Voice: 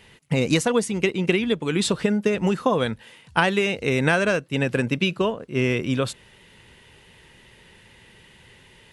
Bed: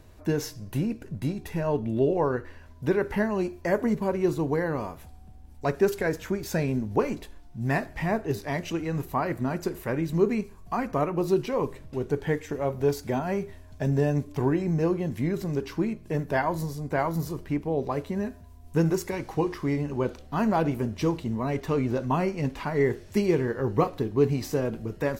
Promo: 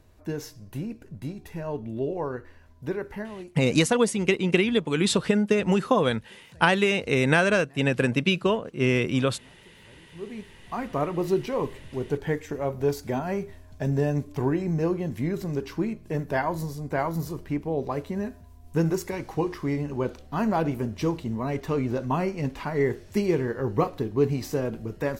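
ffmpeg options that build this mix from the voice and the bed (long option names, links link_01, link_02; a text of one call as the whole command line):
ffmpeg -i stem1.wav -i stem2.wav -filter_complex "[0:a]adelay=3250,volume=-0.5dB[link_01];[1:a]volume=22.5dB,afade=type=out:start_time=2.89:duration=0.85:silence=0.0707946,afade=type=in:start_time=10.09:duration=0.96:silence=0.0398107[link_02];[link_01][link_02]amix=inputs=2:normalize=0" out.wav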